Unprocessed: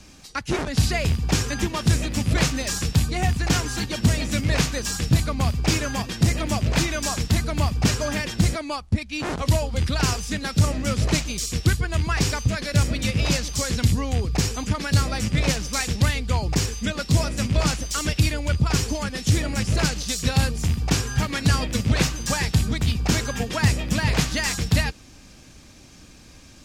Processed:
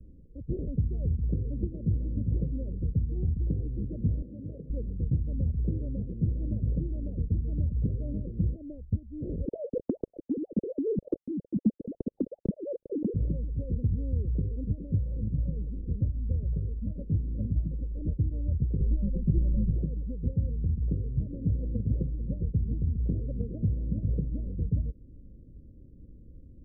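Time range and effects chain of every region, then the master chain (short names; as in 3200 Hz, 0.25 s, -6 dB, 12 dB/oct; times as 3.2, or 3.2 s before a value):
4.22–4.7 HPF 470 Hz 6 dB/oct + compressor 5:1, threshold -27 dBFS
9.45–13.14 sine-wave speech + low shelf 430 Hz +4.5 dB
14.98–17.88 CVSD 16 kbps + stepped notch 5.5 Hz 290–1600 Hz
18.8–19.71 tilt -2.5 dB/oct + comb 5.4 ms, depth 80%
whole clip: steep low-pass 540 Hz 72 dB/oct; low shelf 120 Hz +11.5 dB; compressor 2:1, threshold -21 dBFS; gain -7.5 dB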